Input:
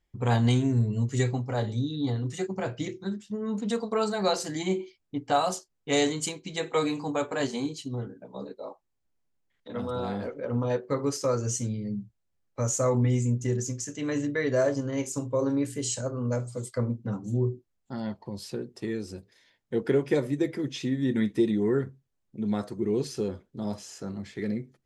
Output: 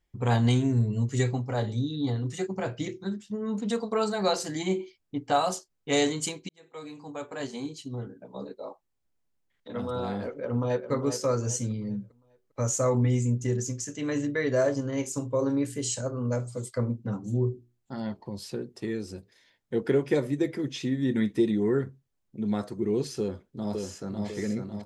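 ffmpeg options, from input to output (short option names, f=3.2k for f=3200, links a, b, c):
-filter_complex "[0:a]asplit=2[a][b];[b]afade=t=in:st=10.33:d=0.01,afade=t=out:st=10.91:d=0.01,aecho=0:1:400|800|1200|1600:0.354813|0.124185|0.0434646|0.0152126[c];[a][c]amix=inputs=2:normalize=0,asettb=1/sr,asplit=3[d][e][f];[d]atrim=end=17.524[g];[e]atrim=start=17.52:end=18.26,asetpts=PTS-STARTPTS,afade=t=in:d=0.004:c=qsin,afade=t=out:st=0.736:d=0.004:c=qsin,bandreject=f=60:t=h:w=6,bandreject=f=120:t=h:w=6,bandreject=f=180:t=h:w=6,bandreject=f=240:t=h:w=6,bandreject=f=300:t=h:w=6,bandreject=f=360:t=h:w=6,bandreject=f=420:t=h:w=6[h];[f]atrim=start=18.256[i];[g][h]acrossfade=d=0.004:c1=hsin:c2=qsin[j];[j][i]acrossfade=d=0.004:c1=qsin:c2=hsin,asplit=2[k][l];[l]afade=t=in:st=23.19:d=0.01,afade=t=out:st=24.26:d=0.01,aecho=0:1:550|1100|1650|2200|2750|3300|3850:0.668344|0.334172|0.167086|0.083543|0.0417715|0.0208857|0.0104429[m];[k][m]amix=inputs=2:normalize=0,asplit=2[n][o];[n]atrim=end=6.49,asetpts=PTS-STARTPTS,afade=t=out:st=6.486:d=0.004:c=hsin[p];[o]atrim=start=6.49,asetpts=PTS-STARTPTS,afade=t=in:d=1.9[q];[p][q]concat=n=2:v=0:a=1"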